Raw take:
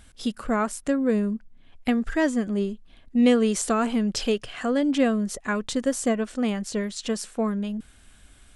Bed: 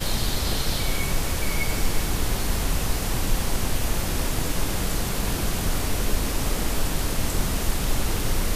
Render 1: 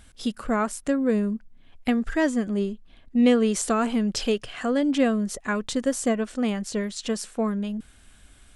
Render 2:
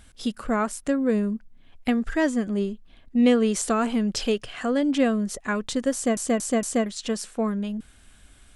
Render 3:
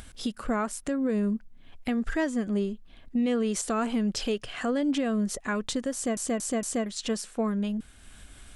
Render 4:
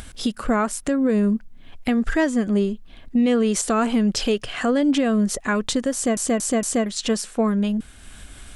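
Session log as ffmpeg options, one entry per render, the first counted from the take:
-filter_complex "[0:a]asettb=1/sr,asplit=3[a][b][c];[a]atrim=end=2.694[d];[b]atrim=start=2.69:end=3.54,asetpts=PTS-STARTPTS,afade=t=in:d=0.004:c=qsin,afade=t=out:st=0.846:d=0.004:c=qsin,highshelf=f=7.6k:g=-6.5[e];[c]atrim=start=3.536[f];[d][e]acrossfade=d=0.004:c1=hsin:c2=qsin[g];[g][f]acrossfade=d=0.004:c1=qsin:c2=hsin"
-filter_complex "[0:a]asplit=5[a][b][c][d][e];[a]atrim=end=6.172[f];[b]atrim=start=5.938:end=6.172[g];[c]atrim=start=5.938:end=6.172[h];[d]atrim=start=5.938:end=6.172[i];[e]atrim=start=6.858[j];[f][g]acrossfade=d=0.004:c1=hsin:c2=hsin[k];[k][h]acrossfade=d=0.004:c1=hsin:c2=hsin[l];[l][i]acrossfade=d=0.004:c1=hsin:c2=hsin[m];[m][j]acrossfade=d=0.004:c1=hsin:c2=hsin"
-af "acompressor=mode=upward:threshold=-40dB:ratio=2.5,alimiter=limit=-19.5dB:level=0:latency=1:release=202"
-af "volume=7.5dB"

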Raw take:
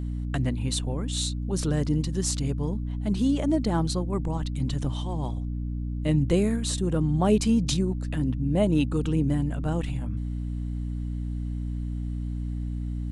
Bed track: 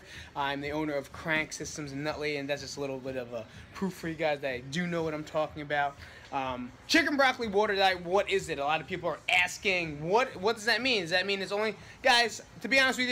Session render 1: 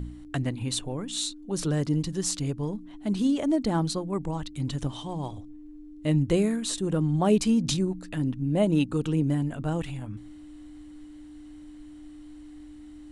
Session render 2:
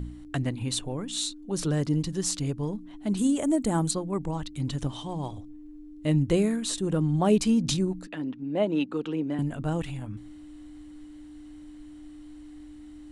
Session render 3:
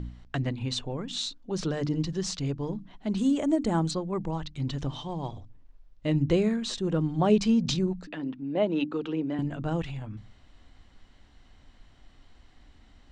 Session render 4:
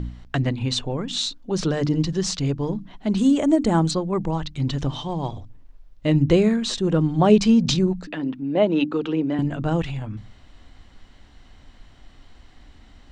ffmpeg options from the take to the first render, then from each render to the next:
-af "bandreject=f=60:t=h:w=4,bandreject=f=120:t=h:w=4,bandreject=f=180:t=h:w=4,bandreject=f=240:t=h:w=4"
-filter_complex "[0:a]asettb=1/sr,asplit=3[a][b][c];[a]atrim=end=3.174[d];[b]atrim=start=3.17:end=3.91,asetpts=PTS-STARTPTS,afade=t=in:d=0.004:c=qsin,afade=t=out:st=0.736:d=0.004:c=qsin,highshelf=f=6.3k:t=q:w=3:g=7.5[e];[c]atrim=start=3.906[f];[d][e]acrossfade=d=0.004:c1=hsin:c2=qsin[g];[g][f]acrossfade=d=0.004:c1=qsin:c2=hsin,asettb=1/sr,asplit=3[h][i][j];[h]atrim=end=8.074[k];[i]atrim=start=8.07:end=9.39,asetpts=PTS-STARTPTS,afade=t=in:d=0.004:c=qsin,afade=t=out:st=1.316:d=0.004:c=qsin,acrossover=split=220 4700:gain=0.0631 1 0.1[l][m][n];[l][m][n]amix=inputs=3:normalize=0[o];[j]atrim=start=9.386[p];[k][o]acrossfade=d=0.004:c1=hsin:c2=qsin[q];[q][p]acrossfade=d=0.004:c1=qsin:c2=hsin"
-af "lowpass=f=6k:w=0.5412,lowpass=f=6k:w=1.3066,bandreject=f=50:t=h:w=6,bandreject=f=100:t=h:w=6,bandreject=f=150:t=h:w=6,bandreject=f=200:t=h:w=6,bandreject=f=250:t=h:w=6,bandreject=f=300:t=h:w=6"
-af "volume=7dB"

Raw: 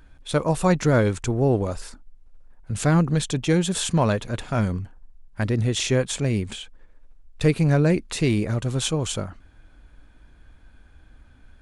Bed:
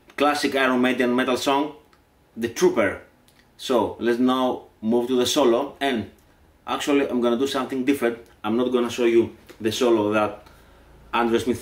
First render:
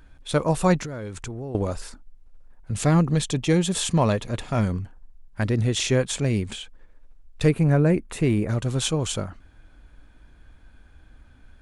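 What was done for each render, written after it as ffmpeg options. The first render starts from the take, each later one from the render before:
-filter_complex "[0:a]asettb=1/sr,asplit=3[a][b][c];[a]atrim=end=0.794[d];[b]atrim=start=0.79:end=1.55,asetpts=PTS-STARTPTS,afade=t=in:d=0.004:c=qsin,afade=t=out:st=0.756:d=0.004:c=qsin,acompressor=threshold=-29dB:ratio=16:attack=3.2:release=140:knee=1:detection=peak[e];[c]atrim=start=1.546[f];[d][e]acrossfade=d=0.004:c1=hsin:c2=qsin[g];[g][f]acrossfade=d=0.004:c1=qsin:c2=hsin,asettb=1/sr,asplit=3[h][i][j];[h]atrim=end=2.714[k];[i]atrim=start=2.71:end=4.63,asetpts=PTS-STARTPTS,afade=t=in:d=0.004:c=qsin,afade=t=out:st=1.916:d=0.004:c=qsin,bandreject=f=1.5k:w=9.2[l];[j]atrim=start=4.626[m];[k][l]acrossfade=d=0.004:c1=hsin:c2=qsin[n];[n][m]acrossfade=d=0.004:c1=qsin:c2=hsin,asettb=1/sr,asplit=3[o][p][q];[o]atrim=end=7.494[r];[p]atrim=start=7.49:end=8.49,asetpts=PTS-STARTPTS,afade=t=in:d=0.004:c=qsin,afade=t=out:st=0.996:d=0.004:c=qsin,equalizer=f=4.7k:w=0.96:g=-12.5[s];[q]atrim=start=8.486[t];[r][s]acrossfade=d=0.004:c1=hsin:c2=qsin[u];[u][t]acrossfade=d=0.004:c1=qsin:c2=hsin"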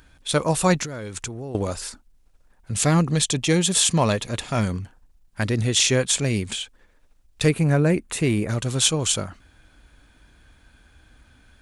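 -af "highpass=f=49:p=1,highshelf=f=2.2k:g=9.5"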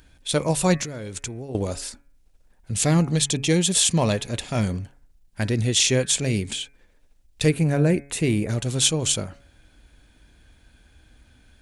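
-af "equalizer=f=1.2k:t=o:w=0.93:g=-6.5,bandreject=f=140.3:t=h:w=4,bandreject=f=280.6:t=h:w=4,bandreject=f=420.9:t=h:w=4,bandreject=f=561.2:t=h:w=4,bandreject=f=701.5:t=h:w=4,bandreject=f=841.8:t=h:w=4,bandreject=f=982.1:t=h:w=4,bandreject=f=1.1224k:t=h:w=4,bandreject=f=1.2627k:t=h:w=4,bandreject=f=1.403k:t=h:w=4,bandreject=f=1.5433k:t=h:w=4,bandreject=f=1.6836k:t=h:w=4,bandreject=f=1.8239k:t=h:w=4,bandreject=f=1.9642k:t=h:w=4,bandreject=f=2.1045k:t=h:w=4,bandreject=f=2.2448k:t=h:w=4,bandreject=f=2.3851k:t=h:w=4,bandreject=f=2.5254k:t=h:w=4"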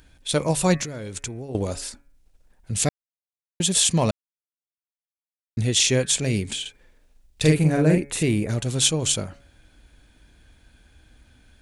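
-filter_complex "[0:a]asettb=1/sr,asplit=3[a][b][c];[a]atrim=end=6.614[d];[b]atrim=start=6.61:end=8.23,asetpts=PTS-STARTPTS,afade=t=in:d=0.004:c=qsin,afade=t=out:st=1.616:d=0.004:c=qsin,asplit=2[e][f];[f]adelay=45,volume=-3dB[g];[e][g]amix=inputs=2:normalize=0,atrim=end_sample=71442[h];[c]atrim=start=8.226[i];[d][h]acrossfade=d=0.004:c1=hsin:c2=qsin[j];[j][i]acrossfade=d=0.004:c1=qsin:c2=hsin,asplit=5[k][l][m][n][o];[k]atrim=end=2.89,asetpts=PTS-STARTPTS,afade=t=out:st=2.886:d=0.004:c=hsin[p];[l]atrim=start=2.89:end=3.6,asetpts=PTS-STARTPTS,volume=0[q];[m]atrim=start=3.6:end=4.11,asetpts=PTS-STARTPTS,afade=t=in:d=0.004:c=hsin,afade=t=out:st=0.506:d=0.004:c=hsin[r];[n]atrim=start=4.11:end=5.57,asetpts=PTS-STARTPTS,volume=0[s];[o]atrim=start=5.57,asetpts=PTS-STARTPTS,afade=t=in:d=0.004:c=hsin[t];[p][q][r][s][t]concat=n=5:v=0:a=1"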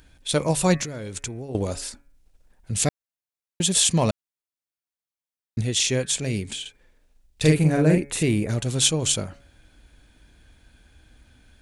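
-filter_complex "[0:a]asplit=3[a][b][c];[a]atrim=end=5.612[d];[b]atrim=start=5.608:end=7.422,asetpts=PTS-STARTPTS,volume=-3dB[e];[c]atrim=start=7.418[f];[d][e]acrossfade=d=0.004:c1=hsin:c2=hsin[g];[g][f]acrossfade=d=0.004:c1=hsin:c2=hsin"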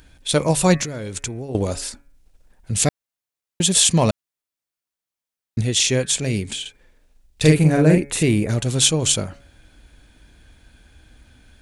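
-af "volume=4dB,alimiter=limit=-1dB:level=0:latency=1"

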